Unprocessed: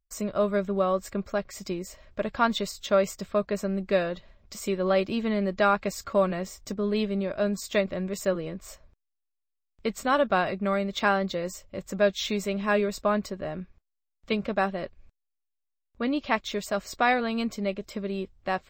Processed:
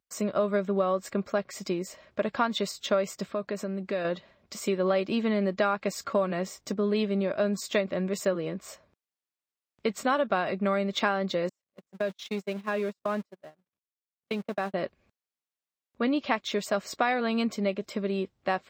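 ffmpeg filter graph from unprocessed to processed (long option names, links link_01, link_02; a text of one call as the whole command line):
ffmpeg -i in.wav -filter_complex "[0:a]asettb=1/sr,asplit=3[link_01][link_02][link_03];[link_01]atrim=end=3.324[link_04];[link_02]atrim=start=3.32:end=4.05,asetpts=PTS-STARTPTS,afade=type=in:duration=0.004:curve=qsin,afade=type=out:start_time=0.726:duration=0.004:curve=qsin,highpass=48,acompressor=threshold=-33dB:ratio=2.5:attack=3.2:release=140:knee=1:detection=peak[link_05];[link_03]atrim=start=4.046[link_06];[link_04][link_05]acrossfade=duration=0.004:curve1=hsin:curve2=qsin[link_07];[link_07][link_06]acrossfade=duration=0.004:curve1=qsin:curve2=hsin,asettb=1/sr,asplit=3[link_08][link_09][link_10];[link_08]atrim=end=11.494[link_11];[link_09]atrim=start=11.49:end=14.74,asetpts=PTS-STARTPTS,afade=type=in:duration=0.004:curve=qsin,afade=type=out:start_time=3.246:duration=0.004:curve=qsin,aeval=exprs='val(0)+0.5*0.0211*sgn(val(0))':channel_layout=same,agate=range=-51dB:threshold=-27dB:ratio=16:release=100:detection=peak,acompressor=threshold=-31dB:ratio=3:attack=3.2:release=140:knee=1:detection=peak[link_12];[link_10]atrim=start=14.736[link_13];[link_11][link_12]acrossfade=duration=0.004:curve1=hsin:curve2=qsin[link_14];[link_14][link_13]acrossfade=duration=0.004:curve1=qsin:curve2=hsin,highpass=160,highshelf=frequency=7300:gain=-6.5,acompressor=threshold=-25dB:ratio=5,volume=3dB" out.wav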